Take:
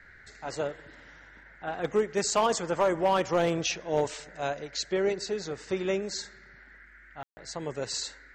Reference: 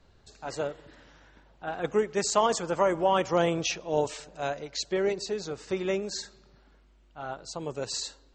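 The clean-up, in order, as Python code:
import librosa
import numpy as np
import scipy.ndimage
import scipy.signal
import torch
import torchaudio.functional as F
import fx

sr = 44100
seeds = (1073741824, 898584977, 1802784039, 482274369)

y = fx.fix_declip(x, sr, threshold_db=-17.5)
y = fx.fix_ambience(y, sr, seeds[0], print_start_s=1.11, print_end_s=1.61, start_s=7.23, end_s=7.37)
y = fx.noise_reduce(y, sr, print_start_s=6.65, print_end_s=7.15, reduce_db=6.0)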